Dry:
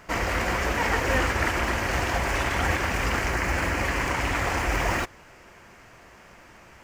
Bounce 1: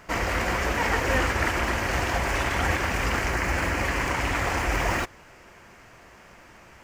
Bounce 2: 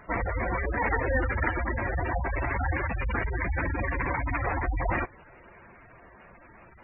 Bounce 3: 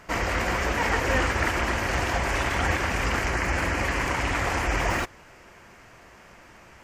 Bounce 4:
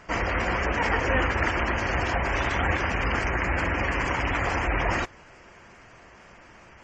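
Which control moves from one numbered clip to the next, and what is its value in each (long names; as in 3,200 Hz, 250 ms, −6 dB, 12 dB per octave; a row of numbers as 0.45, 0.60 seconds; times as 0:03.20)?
gate on every frequency bin, under each frame's peak: −55, −10, −40, −25 decibels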